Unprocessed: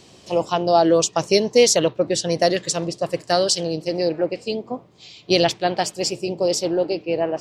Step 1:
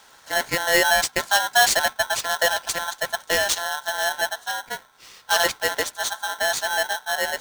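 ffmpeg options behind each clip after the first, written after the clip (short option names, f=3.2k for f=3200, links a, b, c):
-af "aeval=exprs='0.708*(cos(1*acos(clip(val(0)/0.708,-1,1)))-cos(1*PI/2))+0.01*(cos(4*acos(clip(val(0)/0.708,-1,1)))-cos(4*PI/2))':c=same,aeval=exprs='val(0)*sgn(sin(2*PI*1200*n/s))':c=same,volume=-3dB"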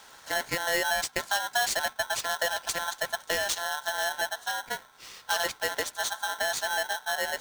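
-af "acompressor=threshold=-29dB:ratio=2.5"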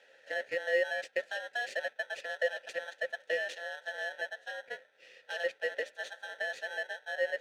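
-filter_complex "[0:a]asplit=3[a][b][c];[a]bandpass=f=530:t=q:w=8,volume=0dB[d];[b]bandpass=f=1.84k:t=q:w=8,volume=-6dB[e];[c]bandpass=f=2.48k:t=q:w=8,volume=-9dB[f];[d][e][f]amix=inputs=3:normalize=0,volume=4.5dB"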